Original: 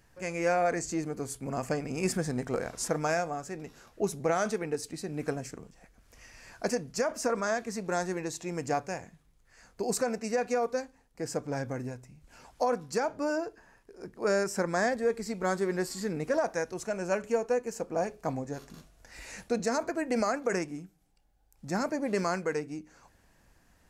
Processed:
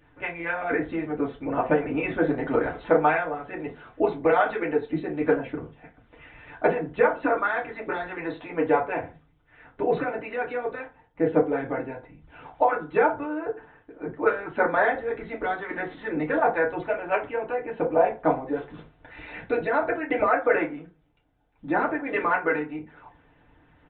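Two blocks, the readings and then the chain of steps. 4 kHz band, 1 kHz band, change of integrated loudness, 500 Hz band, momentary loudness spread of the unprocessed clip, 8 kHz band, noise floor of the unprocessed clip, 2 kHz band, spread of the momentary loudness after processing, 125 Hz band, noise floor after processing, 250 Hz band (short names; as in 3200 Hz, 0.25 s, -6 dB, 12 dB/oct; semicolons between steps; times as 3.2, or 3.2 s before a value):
n/a, +8.0 dB, +6.0 dB, +5.5 dB, 13 LU, under -40 dB, -65 dBFS, +8.5 dB, 14 LU, -0.5 dB, -61 dBFS, +5.0 dB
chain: harmonic-percussive split harmonic -17 dB; FDN reverb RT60 0.31 s, low-frequency decay 0.95×, high-frequency decay 0.55×, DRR -3.5 dB; downsampling 8000 Hz; gain +6.5 dB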